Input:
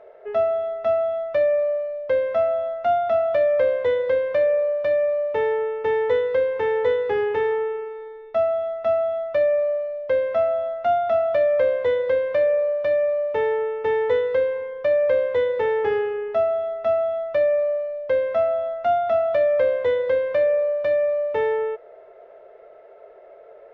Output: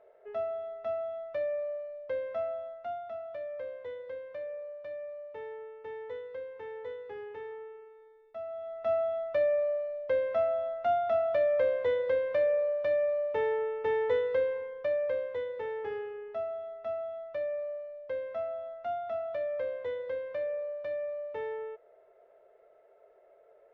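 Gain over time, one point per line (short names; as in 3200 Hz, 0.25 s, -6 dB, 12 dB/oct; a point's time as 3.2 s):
2.48 s -13 dB
3.15 s -20 dB
8.4 s -20 dB
8.93 s -7.5 dB
14.52 s -7.5 dB
15.45 s -14.5 dB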